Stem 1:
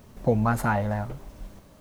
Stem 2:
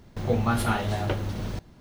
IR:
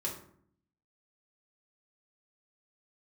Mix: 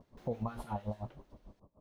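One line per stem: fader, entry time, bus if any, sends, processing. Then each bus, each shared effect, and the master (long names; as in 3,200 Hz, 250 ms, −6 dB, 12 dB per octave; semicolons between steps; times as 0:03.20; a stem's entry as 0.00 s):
−3.5 dB, 0.00 s, no send, elliptic low-pass filter 1,100 Hz; tremolo with a sine in dB 6.7 Hz, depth 29 dB
−16.0 dB, 7.3 ms, no send, high-pass filter 300 Hz; automatic ducking −23 dB, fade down 1.80 s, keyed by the first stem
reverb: not used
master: brickwall limiter −26.5 dBFS, peak gain reduction 10 dB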